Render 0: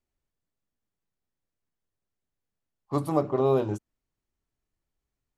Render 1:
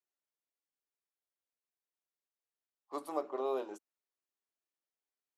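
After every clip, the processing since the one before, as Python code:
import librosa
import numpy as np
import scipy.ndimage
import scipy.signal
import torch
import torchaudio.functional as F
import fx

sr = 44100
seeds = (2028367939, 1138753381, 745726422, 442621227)

y = scipy.signal.sosfilt(scipy.signal.bessel(6, 470.0, 'highpass', norm='mag', fs=sr, output='sos'), x)
y = y * librosa.db_to_amplitude(-8.0)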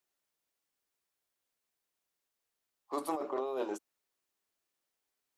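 y = fx.over_compress(x, sr, threshold_db=-39.0, ratio=-1.0)
y = y * librosa.db_to_amplitude(5.0)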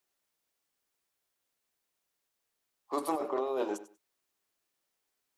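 y = fx.echo_feedback(x, sr, ms=96, feedback_pct=21, wet_db=-15.0)
y = y * librosa.db_to_amplitude(3.0)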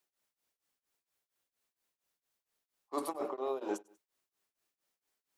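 y = x * np.abs(np.cos(np.pi * 4.3 * np.arange(len(x)) / sr))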